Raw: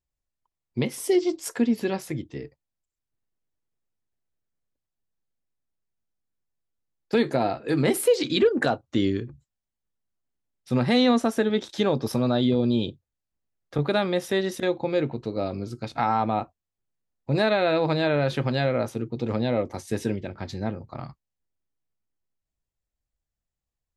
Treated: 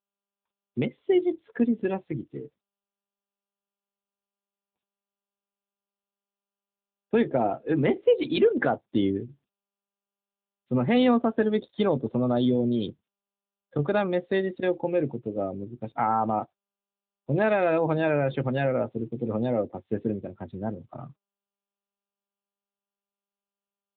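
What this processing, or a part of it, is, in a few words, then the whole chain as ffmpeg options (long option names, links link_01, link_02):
mobile call with aggressive noise cancelling: -filter_complex "[0:a]asettb=1/sr,asplit=3[link_01][link_02][link_03];[link_01]atrim=end=0.834[link_04];[link_02]atrim=start=0.83:end=2.42,asetpts=PTS-STARTPTS,afade=type=in:duration=0.004:curve=qsin,afade=type=out:start_time=1.586:duration=0.004:curve=qsin,bass=frequency=250:gain=0,treble=frequency=4000:gain=9[link_05];[link_03]atrim=start=2.416[link_06];[link_04][link_05]acrossfade=duration=0.004:curve1=hsin:curve2=qsin[link_07];[link_07][link_06]acrossfade=duration=0.004:curve1=qsin:curve2=hsin,highpass=frequency=110:poles=1,lowpass=frequency=5800:width=0.5412,lowpass=frequency=5800:width=1.3066,afftdn=noise_reduction=18:noise_floor=-33" -ar 8000 -c:a libopencore_amrnb -b:a 10200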